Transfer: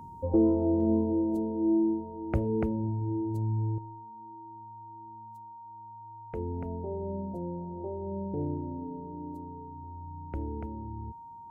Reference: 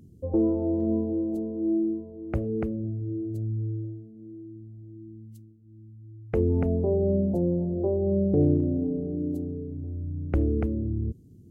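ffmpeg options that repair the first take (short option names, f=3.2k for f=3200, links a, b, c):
-af "bandreject=f=930:w=30,asetnsamples=n=441:p=0,asendcmd='3.78 volume volume 11.5dB',volume=0dB"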